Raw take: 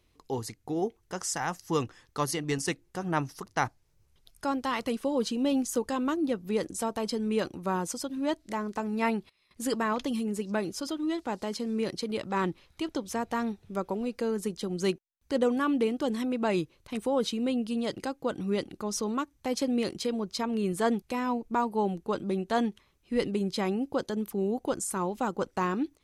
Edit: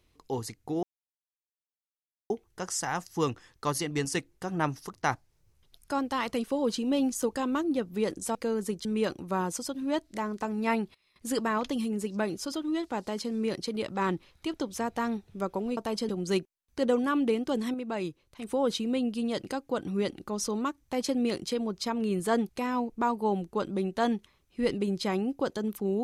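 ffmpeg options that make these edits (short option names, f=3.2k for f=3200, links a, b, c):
-filter_complex "[0:a]asplit=8[a][b][c][d][e][f][g][h];[a]atrim=end=0.83,asetpts=PTS-STARTPTS,afade=t=out:st=0.826:d=0.004:c=hsin,apad=pad_dur=1.47[i];[b]atrim=start=0.83:end=6.882,asetpts=PTS-STARTPTS,afade=t=in:d=0.004:c=hsin[j];[c]atrim=start=14.118:end=14.622[k];[d]atrim=start=7.198:end=14.122[l];[e]atrim=start=6.878:end=7.202[m];[f]atrim=start=14.618:end=16.272[n];[g]atrim=start=16.268:end=17.002,asetpts=PTS-STARTPTS,volume=-5.5dB[o];[h]atrim=start=16.998[p];[i][j]concat=n=2:v=0:a=1[q];[q][k]acrossfade=d=0.004:c1=hsin:c2=hsin[r];[r][l]acrossfade=d=0.004:c1=hsin:c2=hsin[s];[s][m]acrossfade=d=0.004:c1=hsin:c2=hsin[t];[t][n]acrossfade=d=0.004:c1=hsin:c2=hsin[u];[u][o]acrossfade=d=0.004:c1=hsin:c2=hsin[v];[v][p]acrossfade=d=0.004:c1=hsin:c2=hsin"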